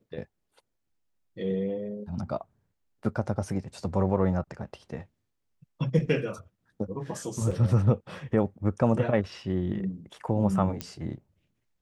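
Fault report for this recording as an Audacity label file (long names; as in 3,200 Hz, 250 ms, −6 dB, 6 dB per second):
7.510000	7.510000	drop-out 4.3 ms
10.810000	10.810000	click −16 dBFS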